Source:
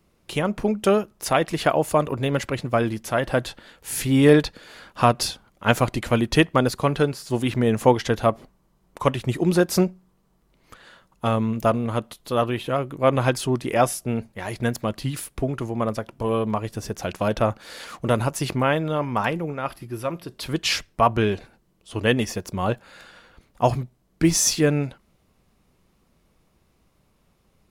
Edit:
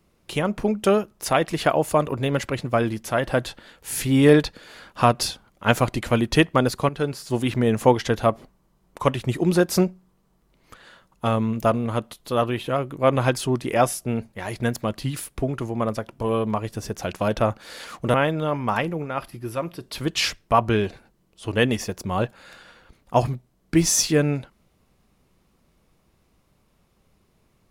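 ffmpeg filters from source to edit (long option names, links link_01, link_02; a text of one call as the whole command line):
ffmpeg -i in.wav -filter_complex "[0:a]asplit=3[link_01][link_02][link_03];[link_01]atrim=end=6.89,asetpts=PTS-STARTPTS,afade=type=out:start_time=6.886:duration=0.004:curve=hsin:silence=0.223872[link_04];[link_02]atrim=start=6.89:end=18.142,asetpts=PTS-STARTPTS,afade=type=in:duration=0.27:silence=0.223872[link_05];[link_03]atrim=start=18.618[link_06];[link_04][link_05]concat=n=2:v=0:a=1[link_07];[link_07][link_06]acrossfade=duration=0.004:curve1=hsin:curve2=hsin" out.wav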